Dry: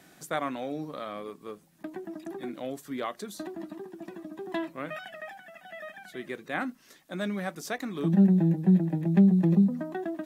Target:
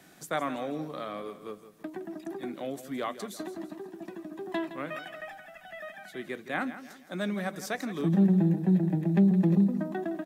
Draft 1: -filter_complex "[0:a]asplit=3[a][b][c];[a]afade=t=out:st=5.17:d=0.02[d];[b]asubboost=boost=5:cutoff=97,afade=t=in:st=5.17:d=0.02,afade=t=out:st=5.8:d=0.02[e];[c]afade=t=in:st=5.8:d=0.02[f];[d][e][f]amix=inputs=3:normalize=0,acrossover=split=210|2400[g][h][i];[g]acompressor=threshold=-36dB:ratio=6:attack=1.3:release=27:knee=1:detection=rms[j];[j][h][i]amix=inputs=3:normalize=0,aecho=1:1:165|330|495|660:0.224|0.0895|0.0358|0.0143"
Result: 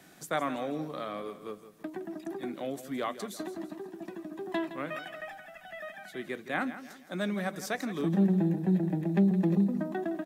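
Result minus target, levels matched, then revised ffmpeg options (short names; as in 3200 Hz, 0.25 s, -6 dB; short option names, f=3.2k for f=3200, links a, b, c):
compressor: peak gain reduction +8.5 dB
-filter_complex "[0:a]asplit=3[a][b][c];[a]afade=t=out:st=5.17:d=0.02[d];[b]asubboost=boost=5:cutoff=97,afade=t=in:st=5.17:d=0.02,afade=t=out:st=5.8:d=0.02[e];[c]afade=t=in:st=5.8:d=0.02[f];[d][e][f]amix=inputs=3:normalize=0,acrossover=split=210|2400[g][h][i];[g]acompressor=threshold=-26dB:ratio=6:attack=1.3:release=27:knee=1:detection=rms[j];[j][h][i]amix=inputs=3:normalize=0,aecho=1:1:165|330|495|660:0.224|0.0895|0.0358|0.0143"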